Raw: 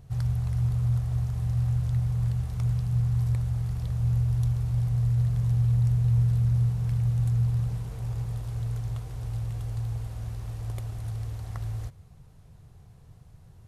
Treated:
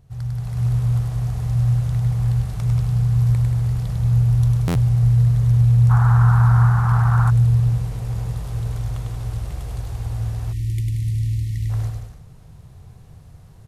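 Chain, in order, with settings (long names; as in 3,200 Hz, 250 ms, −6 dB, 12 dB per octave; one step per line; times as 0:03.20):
bouncing-ball delay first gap 100 ms, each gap 0.8×, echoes 5
automatic gain control gain up to 9 dB
0:05.89–0:07.29: noise in a band 750–1,500 Hz −25 dBFS
0:10.53–0:11.70: time-frequency box erased 380–1,800 Hz
buffer that repeats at 0:04.67, samples 512, times 6
level −3 dB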